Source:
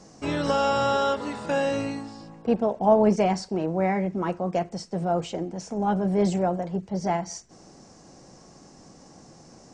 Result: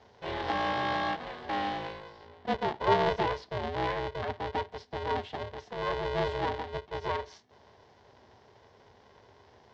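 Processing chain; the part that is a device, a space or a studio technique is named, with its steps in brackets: ring modulator pedal into a guitar cabinet (polarity switched at an audio rate 250 Hz; speaker cabinet 110–3700 Hz, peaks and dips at 170 Hz -8 dB, 290 Hz -9 dB, 520 Hz -7 dB, 1300 Hz -10 dB, 2500 Hz -8 dB); gain -3 dB

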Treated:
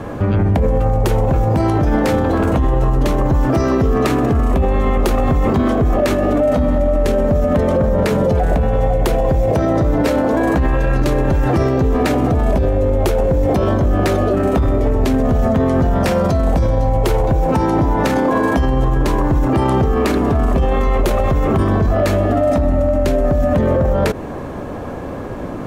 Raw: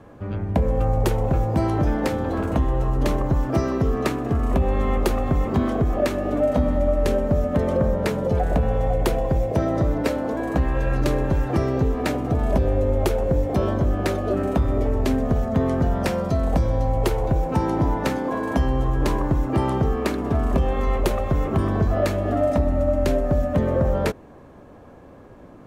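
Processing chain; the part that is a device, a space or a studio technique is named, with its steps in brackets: loud club master (compressor 2:1, threshold -23 dBFS, peak gain reduction 5 dB; hard clip -15.5 dBFS, distortion -29 dB; maximiser +26 dB); gain -7 dB

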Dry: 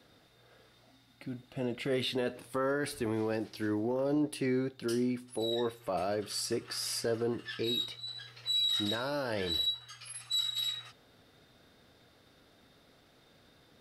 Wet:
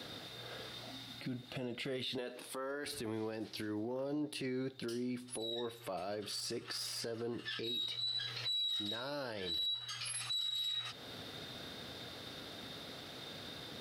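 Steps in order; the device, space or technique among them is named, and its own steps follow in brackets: broadcast voice chain (HPF 79 Hz; de-esser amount 85%; compressor 3:1, threshold -53 dBFS, peak gain reduction 18.5 dB; bell 3800 Hz +6 dB 0.8 oct; limiter -44.5 dBFS, peak gain reduction 10.5 dB); 2.18–2.86 HPF 270 Hz 12 dB/oct; gain +12.5 dB

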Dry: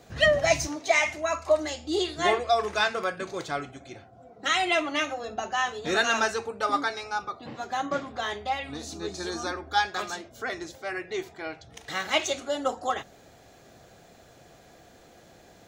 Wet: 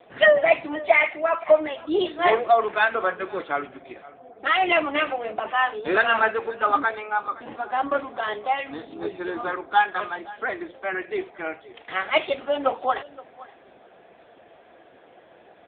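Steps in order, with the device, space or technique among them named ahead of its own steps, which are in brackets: satellite phone (BPF 300–3400 Hz; echo 0.52 s -20 dB; gain +6.5 dB; AMR-NB 6.7 kbps 8000 Hz)

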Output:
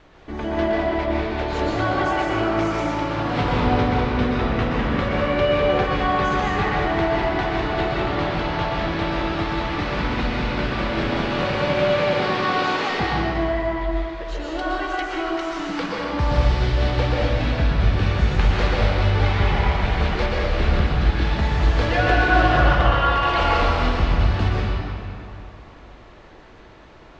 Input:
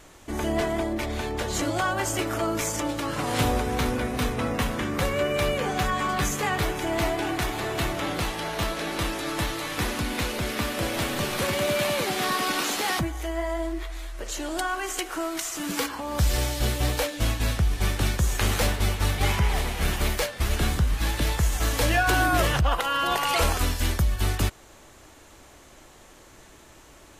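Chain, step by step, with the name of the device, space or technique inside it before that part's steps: LPF 4800 Hz 24 dB/oct; swimming-pool hall (reverb RT60 2.9 s, pre-delay 0.112 s, DRR -4.5 dB; high shelf 4000 Hz -7.5 dB)

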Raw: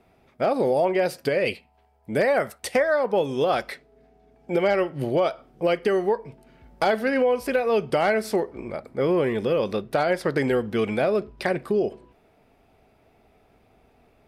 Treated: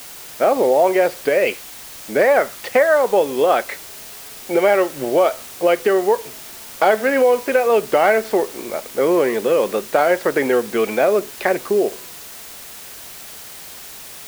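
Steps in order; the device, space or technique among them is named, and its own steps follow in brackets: wax cylinder (BPF 330–2700 Hz; wow and flutter 23 cents; white noise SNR 18 dB); gain +7.5 dB

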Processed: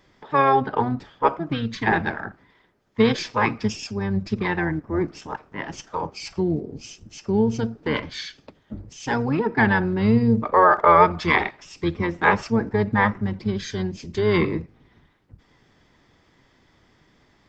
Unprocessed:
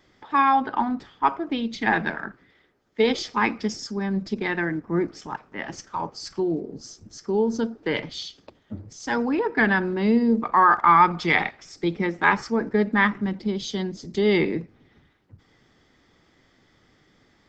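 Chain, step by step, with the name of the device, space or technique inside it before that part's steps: octave pedal (harmoniser -12 st -4 dB); 12.89–14.34 dynamic EQ 3100 Hz, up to -6 dB, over -39 dBFS, Q 1.4

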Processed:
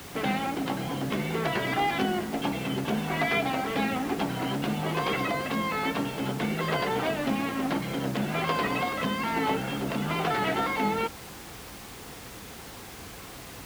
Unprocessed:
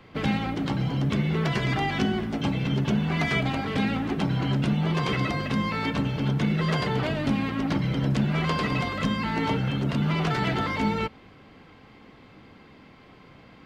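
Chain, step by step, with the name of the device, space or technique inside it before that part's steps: horn gramophone (BPF 250–4100 Hz; bell 670 Hz +6 dB 0.53 oct; wow and flutter; pink noise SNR 13 dB); HPF 53 Hz; notch 610 Hz, Q 12

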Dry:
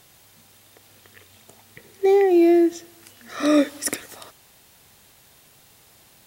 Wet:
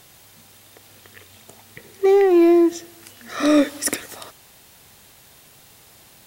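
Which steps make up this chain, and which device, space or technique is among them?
parallel distortion (in parallel at -4.5 dB: hard clip -22 dBFS, distortion -7 dB)

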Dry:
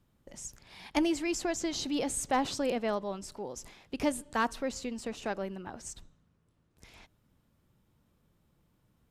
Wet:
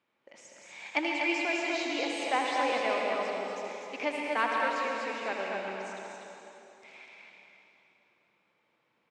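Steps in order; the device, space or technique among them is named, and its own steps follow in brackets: station announcement (BPF 480–3600 Hz; bell 2300 Hz +9 dB 0.41 oct; loudspeakers at several distances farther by 27 m -8 dB, 84 m -5 dB; reverb RT60 3.0 s, pre-delay 0.102 s, DRR 0 dB)

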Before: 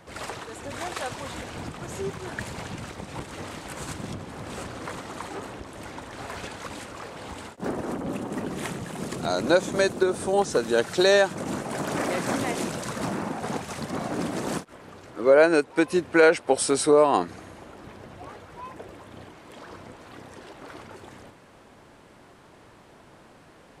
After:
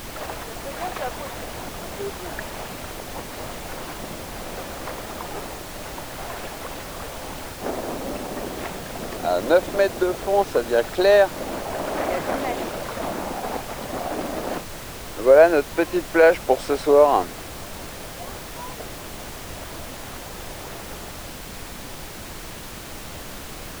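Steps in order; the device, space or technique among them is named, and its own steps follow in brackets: horn gramophone (BPF 250–3500 Hz; bell 650 Hz +6.5 dB; wow and flutter; pink noise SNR 11 dB)

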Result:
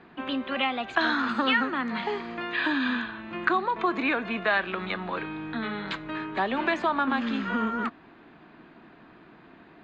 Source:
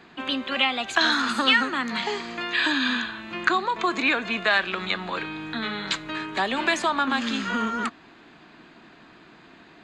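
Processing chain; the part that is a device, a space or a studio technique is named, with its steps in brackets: phone in a pocket (LPF 3800 Hz 12 dB/oct; high shelf 2400 Hz -10.5 dB)

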